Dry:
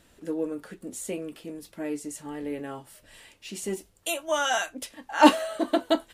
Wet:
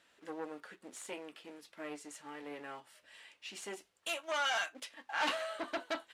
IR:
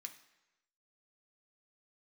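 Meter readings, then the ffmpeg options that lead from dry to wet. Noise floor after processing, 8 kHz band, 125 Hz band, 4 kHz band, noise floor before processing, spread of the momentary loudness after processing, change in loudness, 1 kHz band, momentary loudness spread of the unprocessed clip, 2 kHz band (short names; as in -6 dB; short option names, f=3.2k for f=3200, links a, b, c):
-73 dBFS, -12.0 dB, -19.0 dB, -7.0 dB, -62 dBFS, 17 LU, -12.0 dB, -12.5 dB, 20 LU, -6.0 dB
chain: -filter_complex "[0:a]asplit=2[a][b];[b]acrusher=bits=4:dc=4:mix=0:aa=0.000001,volume=-9dB[c];[a][c]amix=inputs=2:normalize=0,aeval=exprs='(tanh(20*val(0)+0.65)-tanh(0.65))/20':c=same,bandpass=f=2k:t=q:w=0.59:csg=0"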